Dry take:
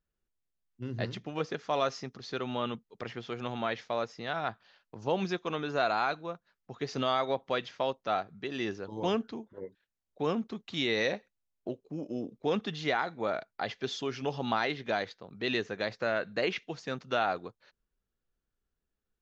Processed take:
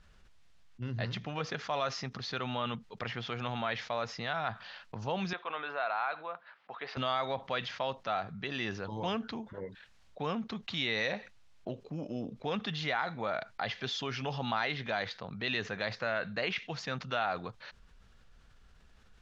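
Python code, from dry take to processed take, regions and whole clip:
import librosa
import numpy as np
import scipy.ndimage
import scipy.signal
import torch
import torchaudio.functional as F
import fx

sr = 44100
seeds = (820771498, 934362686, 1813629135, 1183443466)

y = fx.chain(x, sr, fx.highpass(hz=600.0, slope=12),
    fx.air_absorb(metres=370.0), at=(5.33, 6.97))
y = scipy.signal.sosfilt(scipy.signal.butter(2, 4800.0, 'lowpass', fs=sr, output='sos'), y)
y = fx.peak_eq(y, sr, hz=350.0, db=-10.5, octaves=1.2)
y = fx.env_flatten(y, sr, amount_pct=50)
y = y * librosa.db_to_amplitude(-2.0)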